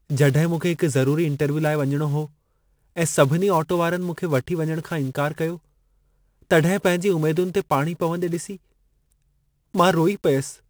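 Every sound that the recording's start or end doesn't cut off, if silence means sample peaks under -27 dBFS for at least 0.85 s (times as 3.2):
6.51–8.53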